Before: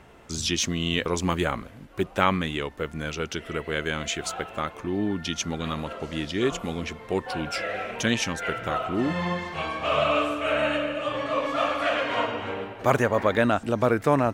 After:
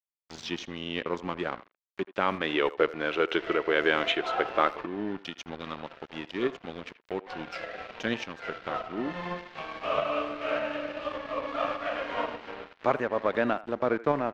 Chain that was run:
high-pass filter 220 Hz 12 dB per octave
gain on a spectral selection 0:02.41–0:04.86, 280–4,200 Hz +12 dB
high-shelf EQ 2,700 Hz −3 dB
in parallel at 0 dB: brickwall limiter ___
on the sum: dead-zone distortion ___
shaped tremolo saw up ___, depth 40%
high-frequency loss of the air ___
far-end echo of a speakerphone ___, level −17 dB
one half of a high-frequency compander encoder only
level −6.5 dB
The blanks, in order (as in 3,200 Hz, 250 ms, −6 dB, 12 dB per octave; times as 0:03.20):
−10.5 dBFS, −29.5 dBFS, 1.7 Hz, 210 metres, 80 ms